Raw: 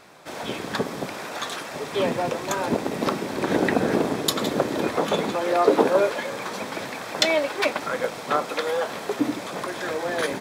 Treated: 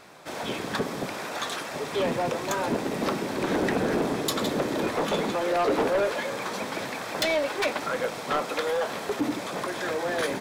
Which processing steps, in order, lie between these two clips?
soft clipping −19.5 dBFS, distortion −10 dB

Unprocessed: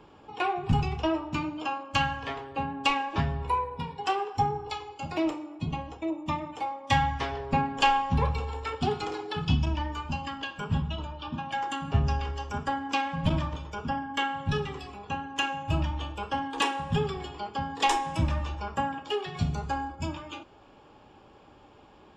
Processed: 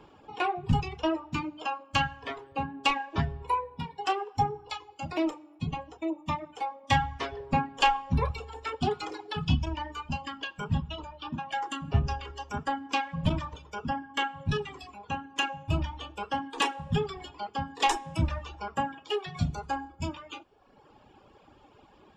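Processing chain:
reverb reduction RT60 1.1 s

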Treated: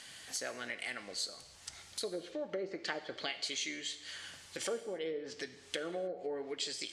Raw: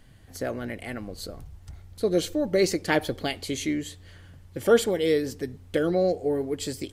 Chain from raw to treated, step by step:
treble cut that deepens with the level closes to 610 Hz, closed at −18.5 dBFS
meter weighting curve ITU-R 468
downward compressor 2.5 to 1, threshold −48 dBFS, peak gain reduction 17.5 dB
parametric band 91 Hz −5 dB
reverb whose tail is shaped and stops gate 340 ms falling, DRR 10 dB
level +5 dB

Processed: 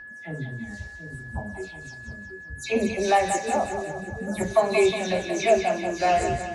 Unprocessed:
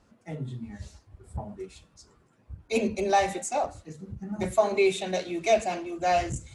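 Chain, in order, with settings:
every frequency bin delayed by itself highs early, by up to 137 ms
echo with a time of its own for lows and highs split 540 Hz, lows 726 ms, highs 182 ms, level −7.5 dB
steady tone 1,700 Hz −42 dBFS
level +2.5 dB

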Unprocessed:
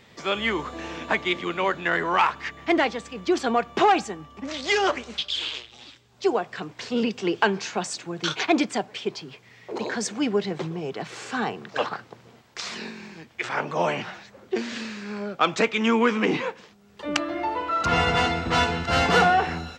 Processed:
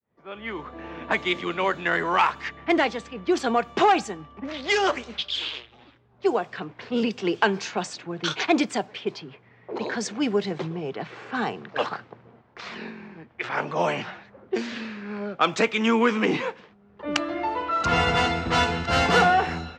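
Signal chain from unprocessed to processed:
fade in at the beginning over 1.17 s
low-pass that shuts in the quiet parts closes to 1,200 Hz, open at −20.5 dBFS

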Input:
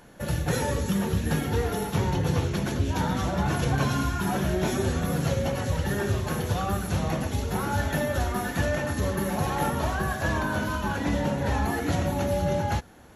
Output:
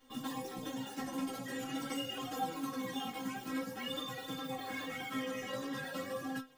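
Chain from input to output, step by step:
stiff-string resonator 130 Hz, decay 0.45 s, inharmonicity 0.002
wrong playback speed 7.5 ips tape played at 15 ips
multi-voice chorus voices 2, 0.46 Hz, delay 11 ms, depth 4.9 ms
level +3 dB

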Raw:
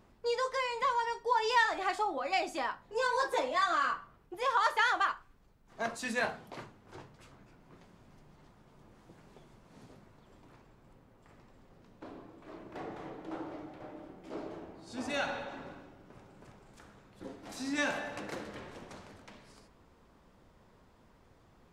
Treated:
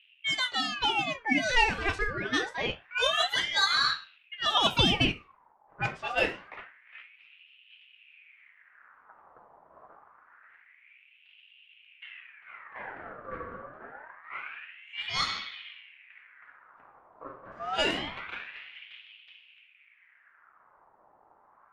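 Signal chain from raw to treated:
dynamic equaliser 1,600 Hz, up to +7 dB, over −49 dBFS, Q 4.5
low-pass that shuts in the quiet parts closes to 480 Hz, open at −25.5 dBFS
ring modulator whose carrier an LFO sweeps 1,800 Hz, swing 55%, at 0.26 Hz
level +5 dB

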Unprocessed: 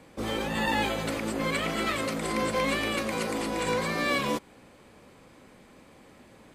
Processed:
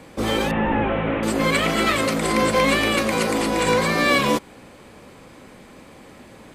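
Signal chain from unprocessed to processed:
0:00.51–0:01.23: linear delta modulator 16 kbit/s, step −38.5 dBFS
level +9 dB

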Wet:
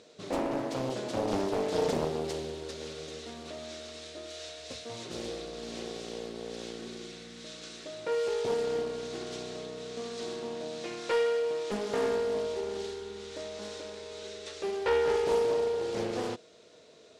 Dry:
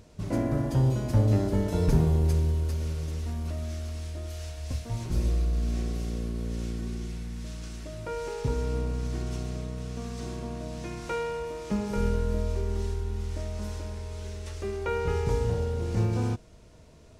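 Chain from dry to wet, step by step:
loudspeaker in its box 370–8,400 Hz, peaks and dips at 460 Hz +6 dB, 940 Hz −7 dB, 3,800 Hz +9 dB
highs frequency-modulated by the lows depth 0.7 ms
level +1.5 dB

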